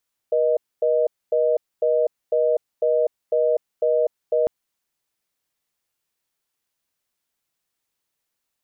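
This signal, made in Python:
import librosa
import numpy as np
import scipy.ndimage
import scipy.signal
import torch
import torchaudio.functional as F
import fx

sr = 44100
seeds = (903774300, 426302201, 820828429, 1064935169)

y = fx.call_progress(sr, length_s=4.15, kind='reorder tone', level_db=-19.0)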